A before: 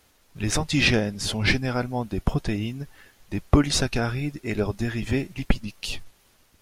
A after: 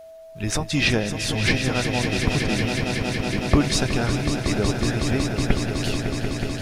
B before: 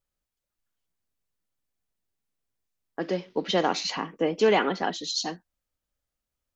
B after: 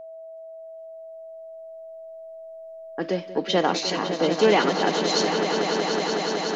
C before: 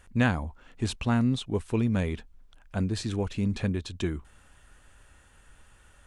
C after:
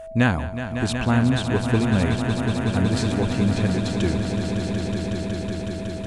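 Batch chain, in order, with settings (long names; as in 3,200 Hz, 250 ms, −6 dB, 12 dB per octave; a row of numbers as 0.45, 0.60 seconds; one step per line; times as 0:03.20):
echo that builds up and dies away 185 ms, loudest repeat 5, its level −9 dB
steady tone 650 Hz −40 dBFS
loudness normalisation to −23 LKFS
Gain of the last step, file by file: −0.5, +2.5, +5.0 decibels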